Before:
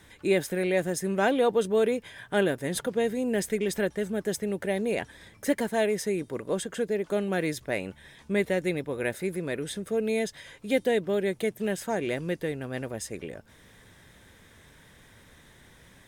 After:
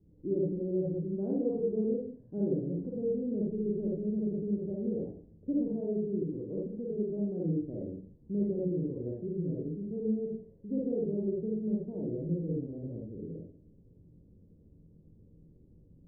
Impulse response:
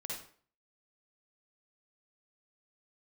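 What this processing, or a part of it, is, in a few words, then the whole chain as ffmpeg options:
next room: -filter_complex "[0:a]lowpass=f=370:w=0.5412,lowpass=f=370:w=1.3066[a];[1:a]atrim=start_sample=2205[b];[a][b]afir=irnorm=-1:irlink=0"

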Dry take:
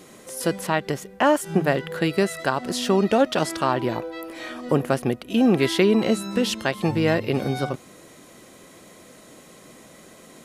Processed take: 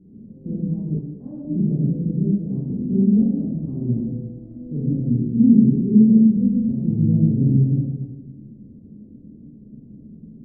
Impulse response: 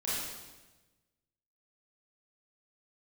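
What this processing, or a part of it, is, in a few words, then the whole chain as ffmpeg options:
club heard from the street: -filter_complex "[0:a]alimiter=limit=-15.5dB:level=0:latency=1,lowpass=f=240:w=0.5412,lowpass=f=240:w=1.3066[a];[1:a]atrim=start_sample=2205[b];[a][b]afir=irnorm=-1:irlink=0,asettb=1/sr,asplit=3[c][d][e];[c]atrim=end=0.994[f];[d]atrim=start=0.99:end=1.45,asetpts=PTS-STARTPTS,afade=t=in:d=0.004:c=qsin,afade=t=out:st=0.456:d=0.004:c=qsin,tiltshelf=f=770:g=-9[g];[e]atrim=start=1.446[h];[f][g]acrossfade=d=0.004:c1=hsin:c2=qsin[i];[i][h]acrossfade=d=0.004:c1=qsin:c2=hsin,volume=6.5dB"

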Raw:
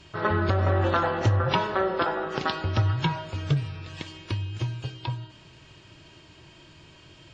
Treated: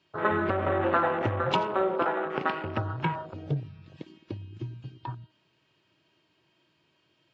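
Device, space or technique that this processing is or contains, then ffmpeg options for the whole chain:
over-cleaned archive recording: -filter_complex "[0:a]highpass=180,lowpass=5.2k,afwtdn=0.02,asettb=1/sr,asplit=3[a][b][c];[a]atrim=end=1.514[d];[b]atrim=start=1.51:end=2.06,asetpts=PTS-STARTPTS,afade=t=in:d=0.004:c=qsin,afade=t=out:st=0.546:d=0.004:c=qsin,equalizer=f=1.8k:t=o:w=0.56:g=-9[e];[c]atrim=start=2.056[f];[d][e]acrossfade=d=0.004:c1=hsin:c2=qsin[g];[g][f]acrossfade=d=0.004:c1=qsin:c2=hsin"

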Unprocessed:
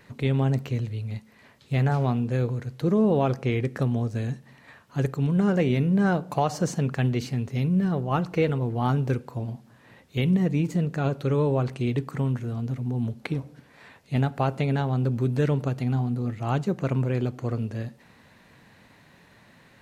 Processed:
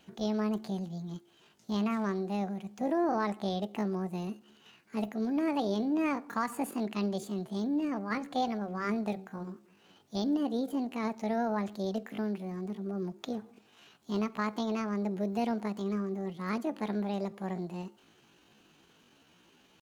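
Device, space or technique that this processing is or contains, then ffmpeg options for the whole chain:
chipmunk voice: -filter_complex "[0:a]asplit=3[a][b][c];[a]afade=t=out:st=8.09:d=0.02[d];[b]bandreject=f=60:t=h:w=6,bandreject=f=120:t=h:w=6,bandreject=f=180:t=h:w=6,bandreject=f=240:t=h:w=6,bandreject=f=300:t=h:w=6,afade=t=in:st=8.09:d=0.02,afade=t=out:st=9.49:d=0.02[e];[c]afade=t=in:st=9.49:d=0.02[f];[d][e][f]amix=inputs=3:normalize=0,asetrate=70004,aresample=44100,atempo=0.629961,volume=-8dB"

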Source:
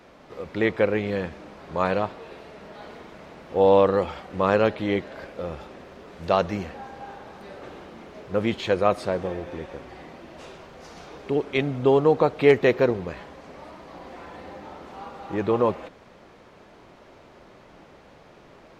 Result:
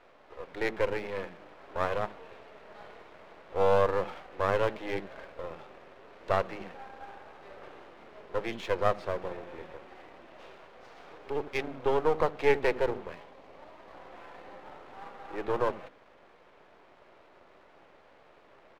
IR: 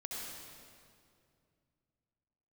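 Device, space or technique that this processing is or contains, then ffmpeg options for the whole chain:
crystal radio: -filter_complex "[0:a]asettb=1/sr,asplit=3[a][b][c];[a]atrim=end=13.154[d];[b]atrim=start=13.15:end=13.78,asetpts=PTS-STARTPTS,afade=t=in:d=0.004:c=qsin,afade=t=out:st=0.626:d=0.004:c=qsin,equalizer=f=1.5k:t=o:w=0.44:g=-12[e];[c]atrim=start=13.776[f];[d][e]acrossfade=d=0.004:c1=hsin:c2=qsin[g];[g][f]acrossfade=d=0.004:c1=qsin:c2=hsin,highpass=320,lowpass=3.1k,acrossover=split=250[h][i];[h]adelay=70[j];[j][i]amix=inputs=2:normalize=0,aeval=exprs='if(lt(val(0),0),0.251*val(0),val(0))':c=same,volume=-2.5dB"

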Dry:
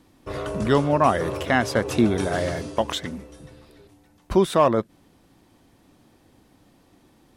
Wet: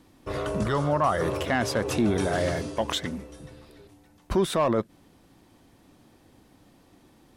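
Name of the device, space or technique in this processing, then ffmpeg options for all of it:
soft clipper into limiter: -filter_complex "[0:a]asoftclip=type=tanh:threshold=-9dB,alimiter=limit=-15.5dB:level=0:latency=1:release=21,asettb=1/sr,asplit=3[a][b][c];[a]atrim=end=0.634[d];[b]atrim=start=0.63:end=1.22,asetpts=PTS-STARTPTS,afade=t=in:d=0.004:c=qsin,afade=t=out:st=0.586:d=0.004:c=qsin,equalizer=f=250:t=o:w=0.33:g=-11,equalizer=f=400:t=o:w=0.33:g=-4,equalizer=f=1.25k:t=o:w=0.33:g=5,equalizer=f=2.5k:t=o:w=0.33:g=-8[e];[c]atrim=start=1.216[f];[d][e]acrossfade=d=0.004:c1=hsin:c2=qsin[g];[g][f]acrossfade=d=0.004:c1=qsin:c2=hsin"

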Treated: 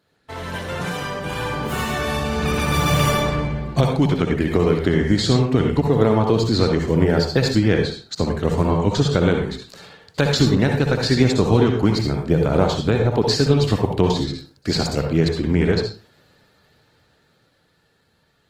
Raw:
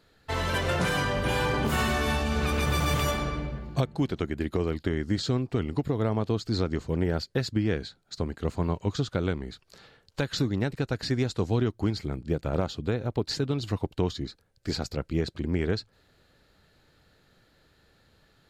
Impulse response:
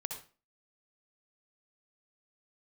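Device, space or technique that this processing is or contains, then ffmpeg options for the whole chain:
far-field microphone of a smart speaker: -filter_complex "[1:a]atrim=start_sample=2205[a];[0:a][a]afir=irnorm=-1:irlink=0,highpass=87,dynaudnorm=f=330:g=17:m=14.5dB" -ar 48000 -c:a libopus -b:a 20k

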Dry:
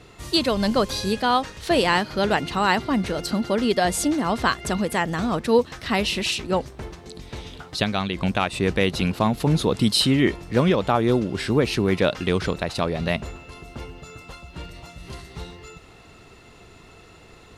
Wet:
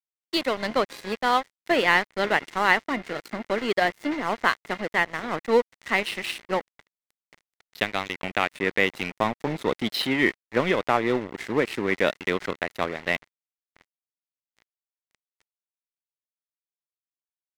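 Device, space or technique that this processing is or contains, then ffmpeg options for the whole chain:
pocket radio on a weak battery: -filter_complex "[0:a]asettb=1/sr,asplit=3[a][b][c];[a]atrim=end=13.184[d];[b]atrim=start=13.18:end=13.82,asetpts=PTS-STARTPTS,afade=t=in:d=0.004:c=qsin,afade=t=out:st=0.636:d=0.004:c=qsin,bandreject=f=60.49:t=h:w=4,bandreject=f=120.98:t=h:w=4,bandreject=f=181.47:t=h:w=4,bandreject=f=241.96:t=h:w=4,bandreject=f=302.45:t=h:w=4,bandreject=f=362.94:t=h:w=4,bandreject=f=423.43:t=h:w=4[e];[c]atrim=start=13.816[f];[d][e]acrossfade=d=0.004:c1=hsin:c2=qsin[g];[g][f]acrossfade=d=0.004:c1=qsin:c2=hsin,highpass=280,lowpass=3.5k,aeval=exprs='sgn(val(0))*max(abs(val(0))-0.0282,0)':c=same,equalizer=f=2k:t=o:w=0.37:g=9"

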